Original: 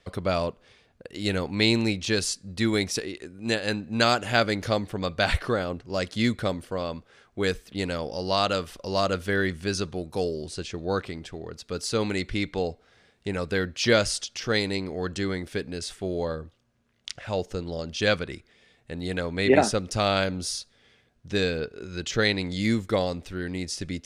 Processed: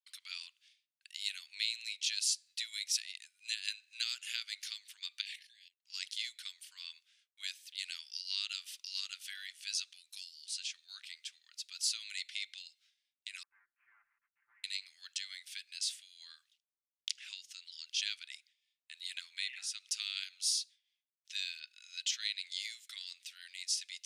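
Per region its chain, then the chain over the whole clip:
0:05.21–0:05.85: linear-phase brick-wall high-pass 1,600 Hz + spectral tilt −2 dB per octave + output level in coarse steps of 13 dB
0:13.43–0:14.64: lower of the sound and its delayed copy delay 5.8 ms + Gaussian smoothing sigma 8.4 samples
whole clip: downward expander −46 dBFS; downward compressor, threshold −26 dBFS; inverse Chebyshev high-pass filter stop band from 580 Hz, stop band 70 dB

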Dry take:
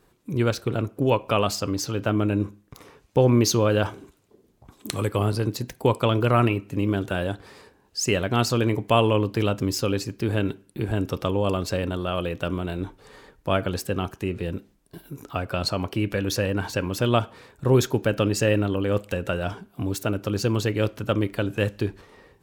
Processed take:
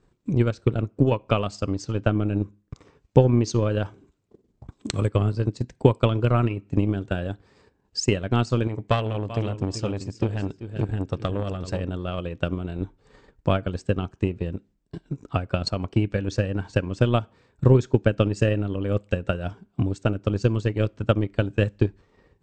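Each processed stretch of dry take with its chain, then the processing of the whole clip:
0:08.67–0:11.81: high-shelf EQ 11,000 Hz +5.5 dB + repeating echo 386 ms, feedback 15%, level −10 dB + saturating transformer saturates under 870 Hz
whole clip: transient designer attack +10 dB, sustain −6 dB; Chebyshev low-pass filter 8,400 Hz, order 8; low-shelf EQ 320 Hz +10 dB; level −8 dB

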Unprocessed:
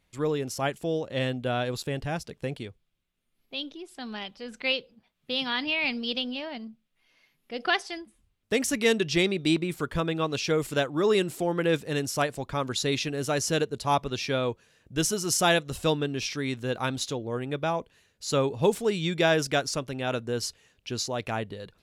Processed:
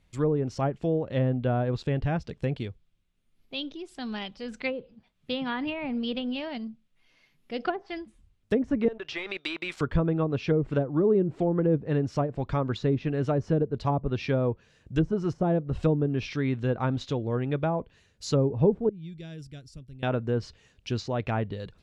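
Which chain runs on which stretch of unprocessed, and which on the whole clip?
0:08.88–0:09.81: high-pass filter 940 Hz + leveller curve on the samples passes 2 + downward compressor 3 to 1, threshold −27 dBFS
0:18.89–0:20.03: guitar amp tone stack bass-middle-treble 10-0-1 + notch filter 6,400 Hz, Q 6.5
whole clip: treble cut that deepens with the level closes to 520 Hz, closed at −21.5 dBFS; low-pass filter 10,000 Hz; low-shelf EQ 200 Hz +9.5 dB

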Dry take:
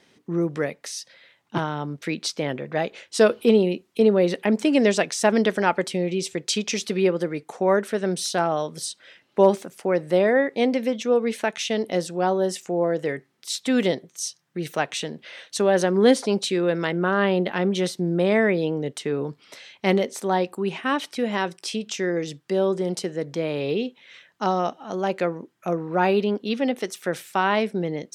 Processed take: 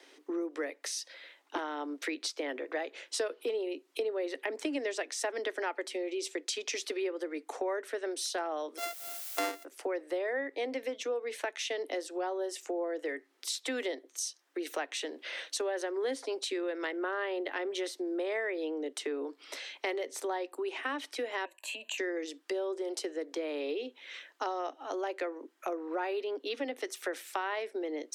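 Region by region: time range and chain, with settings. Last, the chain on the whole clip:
0:08.77–0:09.63: samples sorted by size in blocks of 64 samples + background noise blue −43 dBFS
0:21.45–0:21.98: EQ curve with evenly spaced ripples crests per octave 1.4, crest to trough 12 dB + downward compressor 3 to 1, threshold −28 dBFS + phaser with its sweep stopped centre 1,400 Hz, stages 6
whole clip: Butterworth high-pass 270 Hz 96 dB per octave; dynamic equaliser 1,900 Hz, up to +5 dB, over −43 dBFS, Q 4.1; downward compressor 4 to 1, threshold −36 dBFS; level +1.5 dB

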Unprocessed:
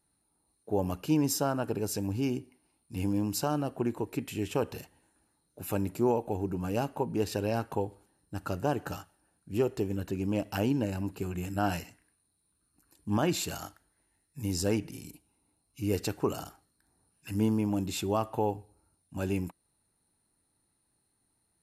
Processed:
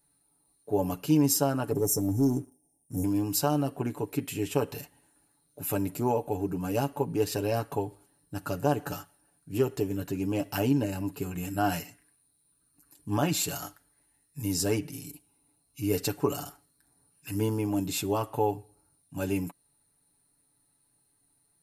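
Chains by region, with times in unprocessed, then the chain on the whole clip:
0:01.71–0:03.04: linear-phase brick-wall band-stop 870–5,300 Hz + leveller curve on the samples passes 1
whole clip: high-shelf EQ 9,600 Hz +10 dB; comb filter 7 ms

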